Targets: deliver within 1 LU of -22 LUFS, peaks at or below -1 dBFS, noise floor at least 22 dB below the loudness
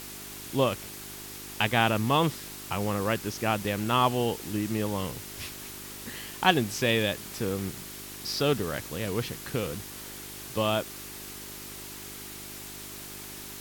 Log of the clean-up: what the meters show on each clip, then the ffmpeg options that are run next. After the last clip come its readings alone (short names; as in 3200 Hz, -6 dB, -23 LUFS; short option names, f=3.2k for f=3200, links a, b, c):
hum 50 Hz; harmonics up to 400 Hz; hum level -50 dBFS; noise floor -42 dBFS; noise floor target -52 dBFS; loudness -30.0 LUFS; peak -7.5 dBFS; loudness target -22.0 LUFS
-> -af "bandreject=f=50:t=h:w=4,bandreject=f=100:t=h:w=4,bandreject=f=150:t=h:w=4,bandreject=f=200:t=h:w=4,bandreject=f=250:t=h:w=4,bandreject=f=300:t=h:w=4,bandreject=f=350:t=h:w=4,bandreject=f=400:t=h:w=4"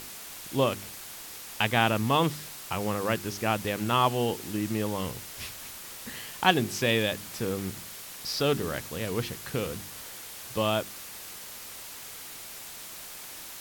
hum none; noise floor -43 dBFS; noise floor target -52 dBFS
-> -af "afftdn=nr=9:nf=-43"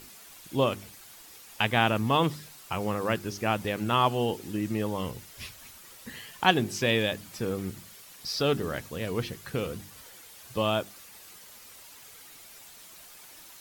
noise floor -50 dBFS; noise floor target -51 dBFS
-> -af "afftdn=nr=6:nf=-50"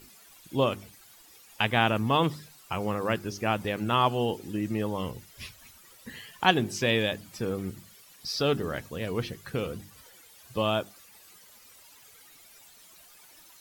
noise floor -55 dBFS; loudness -29.0 LUFS; peak -7.0 dBFS; loudness target -22.0 LUFS
-> -af "volume=7dB,alimiter=limit=-1dB:level=0:latency=1"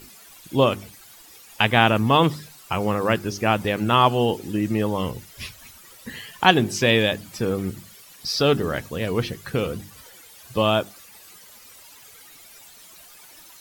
loudness -22.0 LUFS; peak -1.0 dBFS; noise floor -48 dBFS